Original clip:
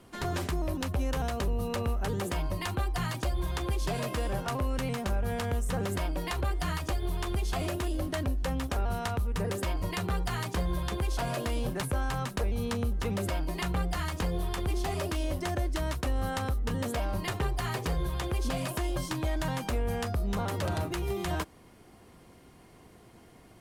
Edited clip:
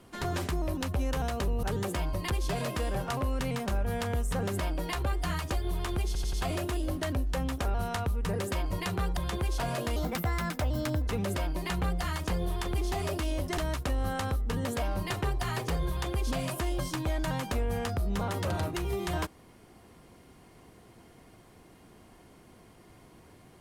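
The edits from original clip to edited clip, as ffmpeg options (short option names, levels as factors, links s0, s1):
-filter_complex "[0:a]asplit=10[s0][s1][s2][s3][s4][s5][s6][s7][s8][s9];[s0]atrim=end=1.632[s10];[s1]atrim=start=1.998:end=2.672[s11];[s2]atrim=start=3.678:end=7.532[s12];[s3]atrim=start=7.438:end=7.532[s13];[s4]atrim=start=7.438:end=7.532[s14];[s5]atrim=start=7.438:end=10.282[s15];[s6]atrim=start=10.758:end=11.554[s16];[s7]atrim=start=11.55:end=13,asetpts=PTS-STARTPTS,asetrate=57330,aresample=44100,atrim=end_sample=49188,asetpts=PTS-STARTPTS[s17];[s8]atrim=start=12.996:end=15.502[s18];[s9]atrim=start=15.748[s19];[s10][s11]acrossfade=d=0.004:c1=hsin:c2=hsin[s20];[s20][s12]acrossfade=d=0.004:c1=hsin:c2=hsin[s21];[s21][s13]acrossfade=d=0.004:c1=hsin:c2=hsin[s22];[s22][s14]acrossfade=d=0.004:c1=hsin:c2=hsin[s23];[s23][s15]acrossfade=d=0.004:c1=hsin:c2=hsin[s24];[s24][s16]acrossfade=d=0.004:c1=hsin:c2=hsin[s25];[s25][s17]acrossfade=d=0.004:c1=hsin:c2=hsin[s26];[s26][s18]acrossfade=d=0.004:c1=hsin:c2=hsin[s27];[s27][s19]acrossfade=d=0.004:c1=hsin:c2=hsin"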